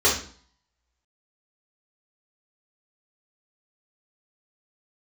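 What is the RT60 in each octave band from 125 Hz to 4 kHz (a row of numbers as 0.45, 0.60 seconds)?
0.60, 0.55, 0.45, 0.50, 0.45, 0.45 seconds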